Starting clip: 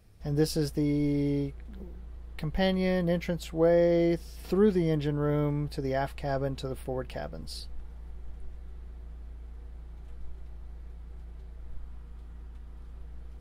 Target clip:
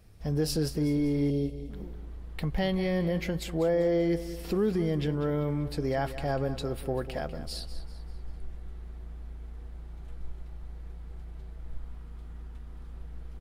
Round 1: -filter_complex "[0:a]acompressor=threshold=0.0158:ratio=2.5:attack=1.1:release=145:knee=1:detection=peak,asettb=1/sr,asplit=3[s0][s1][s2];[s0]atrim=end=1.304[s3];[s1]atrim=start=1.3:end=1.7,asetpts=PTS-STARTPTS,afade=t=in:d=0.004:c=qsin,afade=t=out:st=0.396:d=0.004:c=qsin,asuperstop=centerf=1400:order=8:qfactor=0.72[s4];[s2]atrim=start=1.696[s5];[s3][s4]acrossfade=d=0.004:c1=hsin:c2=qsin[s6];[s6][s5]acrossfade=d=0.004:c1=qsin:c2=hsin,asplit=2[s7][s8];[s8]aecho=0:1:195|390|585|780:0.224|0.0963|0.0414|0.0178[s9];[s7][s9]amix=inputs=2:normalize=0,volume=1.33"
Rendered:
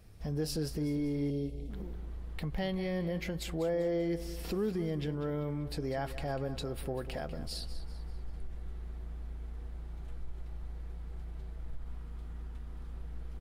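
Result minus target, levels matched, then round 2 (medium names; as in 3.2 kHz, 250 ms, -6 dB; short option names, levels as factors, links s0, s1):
compression: peak gain reduction +6 dB
-filter_complex "[0:a]acompressor=threshold=0.0501:ratio=2.5:attack=1.1:release=145:knee=1:detection=peak,asettb=1/sr,asplit=3[s0][s1][s2];[s0]atrim=end=1.304[s3];[s1]atrim=start=1.3:end=1.7,asetpts=PTS-STARTPTS,afade=t=in:d=0.004:c=qsin,afade=t=out:st=0.396:d=0.004:c=qsin,asuperstop=centerf=1400:order=8:qfactor=0.72[s4];[s2]atrim=start=1.696[s5];[s3][s4]acrossfade=d=0.004:c1=hsin:c2=qsin[s6];[s6][s5]acrossfade=d=0.004:c1=qsin:c2=hsin,asplit=2[s7][s8];[s8]aecho=0:1:195|390|585|780:0.224|0.0963|0.0414|0.0178[s9];[s7][s9]amix=inputs=2:normalize=0,volume=1.33"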